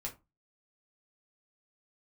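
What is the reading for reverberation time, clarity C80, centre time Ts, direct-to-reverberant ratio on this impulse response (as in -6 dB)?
0.25 s, 22.0 dB, 13 ms, -2.0 dB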